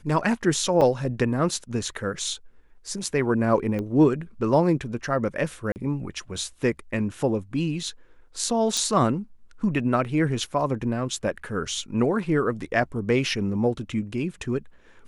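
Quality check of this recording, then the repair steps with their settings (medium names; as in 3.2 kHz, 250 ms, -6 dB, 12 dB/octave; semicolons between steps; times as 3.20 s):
0.81–0.82 s: dropout 5.3 ms
3.79 s: pop -19 dBFS
5.72–5.76 s: dropout 39 ms
8.77 s: pop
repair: de-click; interpolate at 0.81 s, 5.3 ms; interpolate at 5.72 s, 39 ms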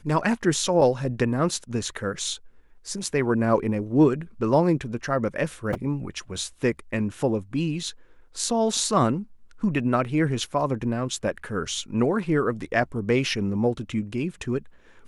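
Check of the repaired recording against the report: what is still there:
3.79 s: pop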